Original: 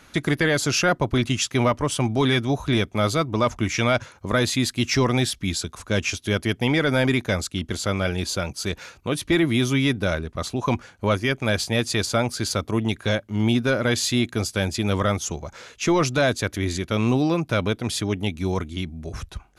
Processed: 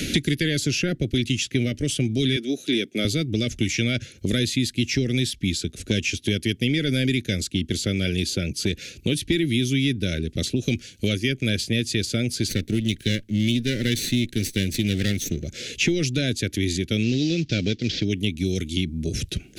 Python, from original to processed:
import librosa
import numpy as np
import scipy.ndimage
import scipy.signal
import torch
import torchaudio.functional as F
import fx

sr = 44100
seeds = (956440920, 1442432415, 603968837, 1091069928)

y = fx.highpass(x, sr, hz=260.0, slope=24, at=(2.36, 3.05))
y = fx.lower_of_two(y, sr, delay_ms=0.5, at=(12.48, 15.43), fade=0.02)
y = fx.cvsd(y, sr, bps=32000, at=(17.03, 18.05))
y = scipy.signal.sosfilt(scipy.signal.cheby1(2, 1.0, [340.0, 2900.0], 'bandstop', fs=sr, output='sos'), y)
y = fx.dynamic_eq(y, sr, hz=1500.0, q=1.1, threshold_db=-45.0, ratio=4.0, max_db=6)
y = fx.band_squash(y, sr, depth_pct=100)